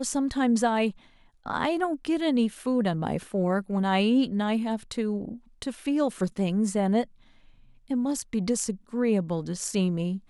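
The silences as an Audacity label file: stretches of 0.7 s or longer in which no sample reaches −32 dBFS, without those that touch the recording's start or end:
7.040000	7.910000	silence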